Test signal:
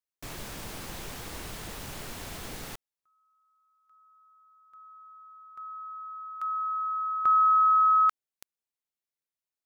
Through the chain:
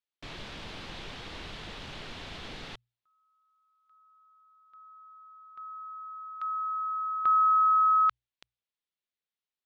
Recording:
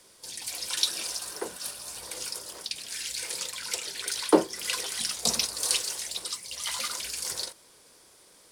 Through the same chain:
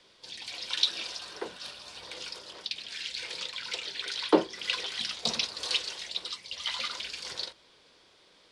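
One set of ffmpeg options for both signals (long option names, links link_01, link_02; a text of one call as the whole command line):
ffmpeg -i in.wav -af "lowpass=frequency=3600:width_type=q:width=1.9,bandreject=frequency=60:width_type=h:width=6,bandreject=frequency=120:width_type=h:width=6,volume=-2.5dB" out.wav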